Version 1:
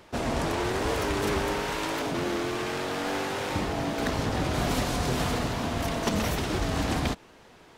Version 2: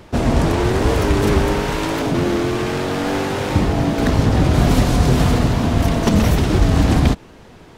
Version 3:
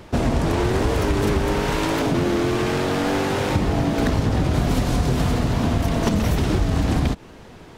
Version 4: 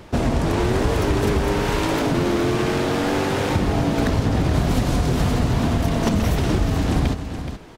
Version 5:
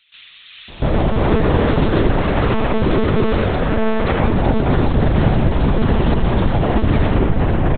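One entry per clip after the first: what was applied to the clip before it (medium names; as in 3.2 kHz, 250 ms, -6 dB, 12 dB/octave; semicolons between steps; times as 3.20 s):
bass shelf 320 Hz +11 dB; trim +6 dB
compression, threshold -16 dBFS, peak gain reduction 8 dB
delay 424 ms -9.5 dB
doubling 31 ms -6 dB; bands offset in time highs, lows 690 ms, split 2.9 kHz; monotone LPC vocoder at 8 kHz 220 Hz; trim +4 dB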